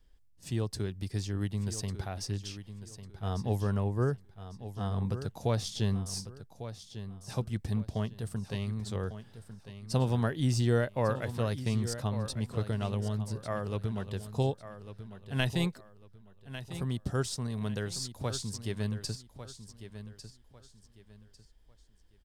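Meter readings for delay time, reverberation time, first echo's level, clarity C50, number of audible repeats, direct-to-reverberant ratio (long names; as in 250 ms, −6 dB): 1,149 ms, no reverb audible, −12.0 dB, no reverb audible, 3, no reverb audible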